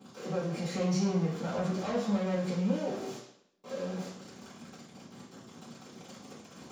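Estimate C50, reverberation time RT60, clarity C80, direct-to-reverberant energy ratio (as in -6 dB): 3.5 dB, 0.70 s, 7.5 dB, -15.5 dB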